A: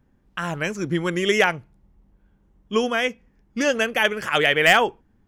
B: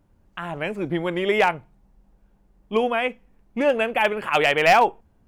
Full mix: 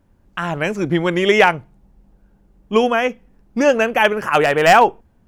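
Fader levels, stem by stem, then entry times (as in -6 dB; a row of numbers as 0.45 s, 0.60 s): -1.5 dB, +3.0 dB; 0.00 s, 0.00 s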